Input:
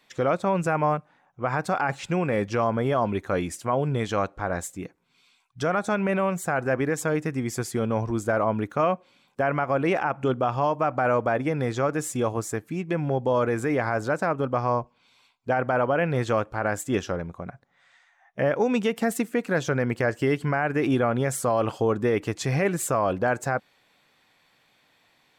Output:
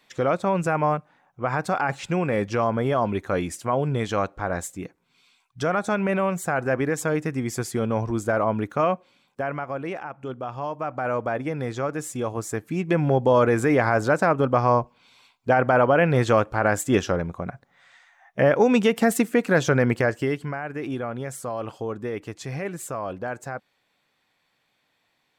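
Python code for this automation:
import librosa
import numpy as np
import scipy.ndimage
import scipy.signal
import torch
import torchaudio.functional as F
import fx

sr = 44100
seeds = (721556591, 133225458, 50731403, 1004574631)

y = fx.gain(x, sr, db=fx.line((8.92, 1.0), (10.13, -10.0), (11.24, -2.5), (12.27, -2.5), (12.89, 5.0), (19.89, 5.0), (20.61, -7.0)))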